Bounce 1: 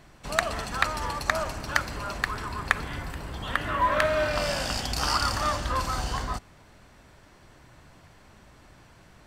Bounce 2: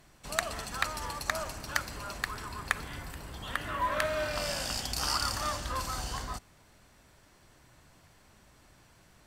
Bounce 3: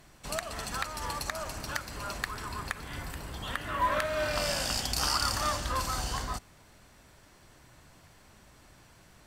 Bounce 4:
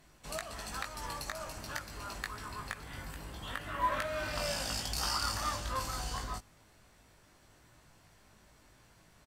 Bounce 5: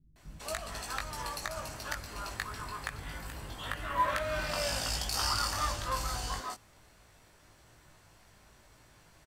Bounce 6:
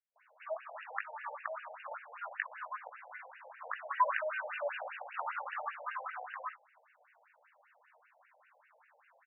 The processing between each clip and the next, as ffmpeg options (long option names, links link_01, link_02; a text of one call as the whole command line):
ffmpeg -i in.wav -af "aemphasis=mode=production:type=cd,volume=-7dB" out.wav
ffmpeg -i in.wav -af "alimiter=limit=-18dB:level=0:latency=1:release=285,volume=3dB" out.wav
ffmpeg -i in.wav -filter_complex "[0:a]asplit=2[link_01][link_02];[link_02]adelay=19,volume=-4dB[link_03];[link_01][link_03]amix=inputs=2:normalize=0,volume=-6.5dB" out.wav
ffmpeg -i in.wav -filter_complex "[0:a]acrossover=split=230[link_01][link_02];[link_02]adelay=160[link_03];[link_01][link_03]amix=inputs=2:normalize=0,volume=2.5dB" out.wav
ffmpeg -i in.wav -af "afftfilt=real='re*between(b*sr/1024,610*pow(2100/610,0.5+0.5*sin(2*PI*5.1*pts/sr))/1.41,610*pow(2100/610,0.5+0.5*sin(2*PI*5.1*pts/sr))*1.41)':imag='im*between(b*sr/1024,610*pow(2100/610,0.5+0.5*sin(2*PI*5.1*pts/sr))/1.41,610*pow(2100/610,0.5+0.5*sin(2*PI*5.1*pts/sr))*1.41)':win_size=1024:overlap=0.75,volume=2dB" out.wav